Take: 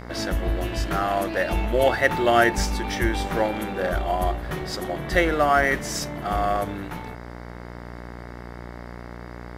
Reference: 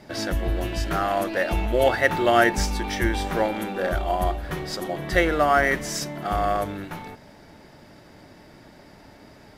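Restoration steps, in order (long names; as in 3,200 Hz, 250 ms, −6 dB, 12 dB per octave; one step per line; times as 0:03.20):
hum removal 59.6 Hz, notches 37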